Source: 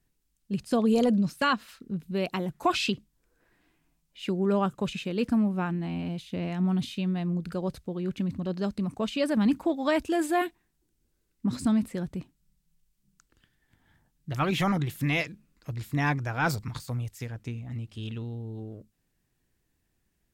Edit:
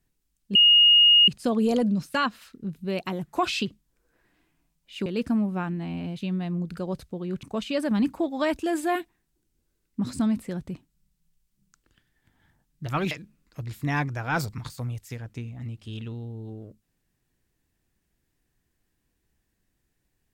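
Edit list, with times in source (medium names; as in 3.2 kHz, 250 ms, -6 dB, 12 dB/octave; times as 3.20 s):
0.55 s: add tone 2.86 kHz -12.5 dBFS 0.73 s
4.33–5.08 s: delete
6.23–6.96 s: delete
8.18–8.89 s: delete
14.57–15.21 s: delete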